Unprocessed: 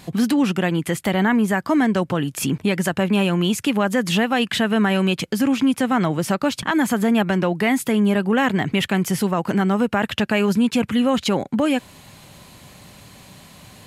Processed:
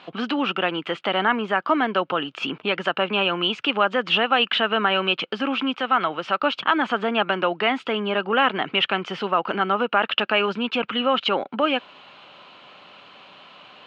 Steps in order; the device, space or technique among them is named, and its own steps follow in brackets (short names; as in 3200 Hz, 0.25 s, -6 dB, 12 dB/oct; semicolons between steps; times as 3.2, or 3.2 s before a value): 5.75–6.4 bell 290 Hz -4.5 dB 2.7 oct; phone earpiece (speaker cabinet 440–3500 Hz, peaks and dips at 1300 Hz +8 dB, 1900 Hz -6 dB, 2900 Hz +7 dB); gain +1 dB